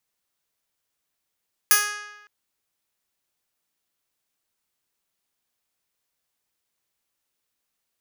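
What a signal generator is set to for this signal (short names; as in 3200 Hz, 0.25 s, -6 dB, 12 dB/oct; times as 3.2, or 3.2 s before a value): plucked string G#4, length 0.56 s, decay 1.08 s, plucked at 0.1, bright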